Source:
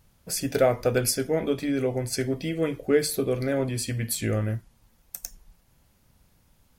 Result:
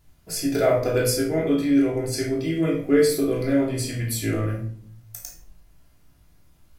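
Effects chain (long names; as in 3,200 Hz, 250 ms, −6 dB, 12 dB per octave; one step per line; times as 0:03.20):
tuned comb filter 56 Hz, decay 0.3 s, harmonics all, mix 70%
0:02.88–0:04.54: surface crackle 390 per second −56 dBFS
rectangular room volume 690 cubic metres, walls furnished, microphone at 3.1 metres
level +2 dB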